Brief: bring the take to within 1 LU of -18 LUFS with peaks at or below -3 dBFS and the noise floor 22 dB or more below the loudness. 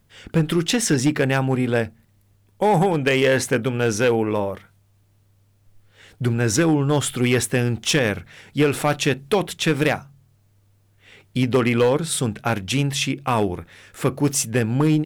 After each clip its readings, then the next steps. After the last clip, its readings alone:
clipped samples 1.0%; clipping level -11.5 dBFS; loudness -21.0 LUFS; peak level -11.5 dBFS; loudness target -18.0 LUFS
-> clip repair -11.5 dBFS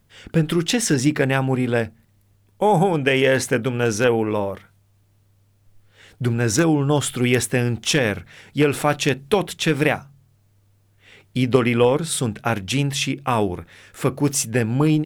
clipped samples 0.0%; loudness -20.5 LUFS; peak level -2.5 dBFS; loudness target -18.0 LUFS
-> trim +2.5 dB; peak limiter -3 dBFS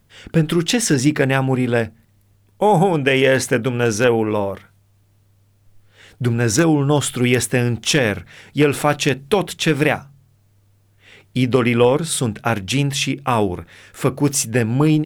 loudness -18.0 LUFS; peak level -3.0 dBFS; noise floor -57 dBFS

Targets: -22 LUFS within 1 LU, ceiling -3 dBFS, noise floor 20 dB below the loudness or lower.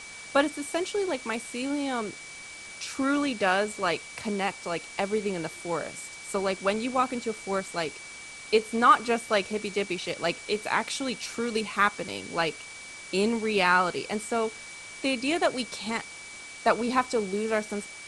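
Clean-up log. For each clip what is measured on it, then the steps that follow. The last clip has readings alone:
steady tone 2.3 kHz; tone level -43 dBFS; noise floor -43 dBFS; noise floor target -48 dBFS; loudness -28.0 LUFS; peak level -7.5 dBFS; loudness target -22.0 LUFS
-> band-stop 2.3 kHz, Q 30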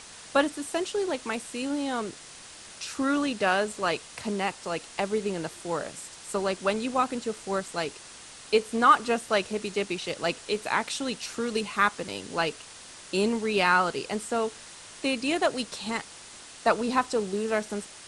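steady tone not found; noise floor -47 dBFS; noise floor target -48 dBFS
-> noise print and reduce 6 dB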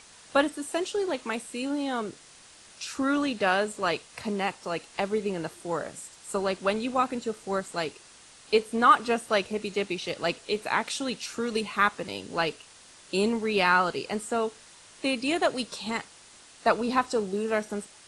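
noise floor -53 dBFS; loudness -28.0 LUFS; peak level -7.5 dBFS; loudness target -22.0 LUFS
-> trim +6 dB; peak limiter -3 dBFS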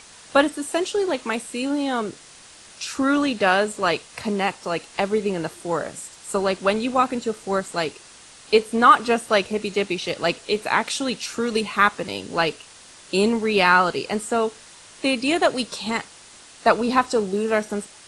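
loudness -22.0 LUFS; peak level -3.0 dBFS; noise floor -47 dBFS

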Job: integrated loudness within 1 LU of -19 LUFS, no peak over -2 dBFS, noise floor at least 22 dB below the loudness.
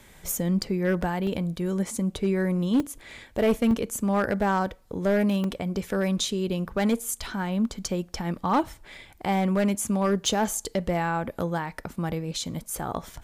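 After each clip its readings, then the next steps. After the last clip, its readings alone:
clipped samples 0.9%; clipping level -16.5 dBFS; dropouts 5; longest dropout 2.1 ms; loudness -27.0 LUFS; peak level -16.5 dBFS; loudness target -19.0 LUFS
-> clip repair -16.5 dBFS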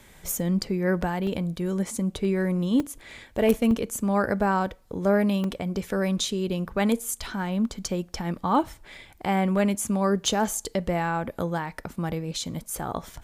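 clipped samples 0.0%; dropouts 5; longest dropout 2.1 ms
-> interpolate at 1.27/2.80/3.71/5.44/10.26 s, 2.1 ms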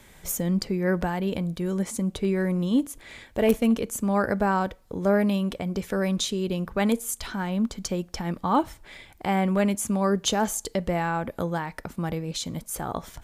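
dropouts 0; loudness -26.5 LUFS; peak level -7.5 dBFS; loudness target -19.0 LUFS
-> trim +7.5 dB; peak limiter -2 dBFS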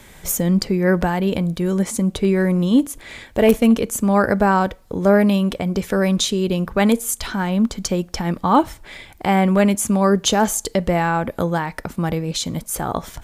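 loudness -19.0 LUFS; peak level -2.0 dBFS; noise floor -46 dBFS

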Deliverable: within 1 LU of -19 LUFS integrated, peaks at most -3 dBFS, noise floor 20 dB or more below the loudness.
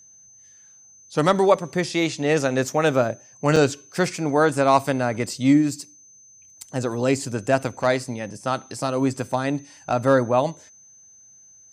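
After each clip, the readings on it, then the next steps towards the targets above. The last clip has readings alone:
dropouts 1; longest dropout 4.0 ms; steady tone 6.2 kHz; tone level -48 dBFS; loudness -22.0 LUFS; peak level -4.5 dBFS; loudness target -19.0 LUFS
-> interpolate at 3.56 s, 4 ms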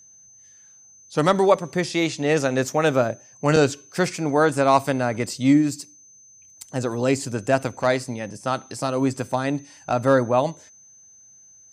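dropouts 0; steady tone 6.2 kHz; tone level -48 dBFS
-> band-stop 6.2 kHz, Q 30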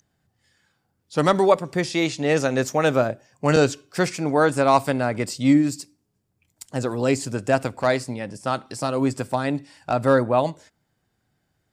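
steady tone not found; loudness -22.0 LUFS; peak level -4.5 dBFS; loudness target -19.0 LUFS
-> trim +3 dB; peak limiter -3 dBFS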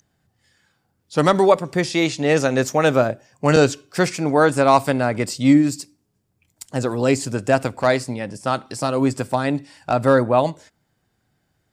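loudness -19.5 LUFS; peak level -3.0 dBFS; noise floor -70 dBFS

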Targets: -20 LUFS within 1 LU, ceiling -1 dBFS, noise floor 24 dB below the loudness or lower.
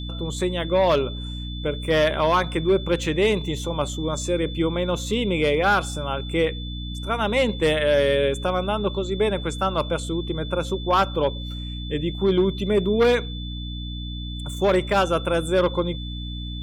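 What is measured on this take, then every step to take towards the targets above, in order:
hum 60 Hz; highest harmonic 300 Hz; hum level -29 dBFS; steady tone 3.5 kHz; tone level -37 dBFS; loudness -23.5 LUFS; peak level -10.5 dBFS; loudness target -20.0 LUFS
-> de-hum 60 Hz, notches 5; band-stop 3.5 kHz, Q 30; trim +3.5 dB

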